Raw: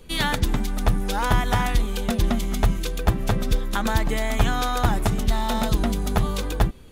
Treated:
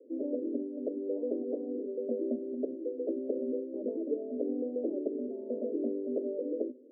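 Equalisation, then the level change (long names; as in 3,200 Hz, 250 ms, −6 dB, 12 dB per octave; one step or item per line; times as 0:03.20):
Chebyshev band-pass filter 250–590 Hz, order 5
0.0 dB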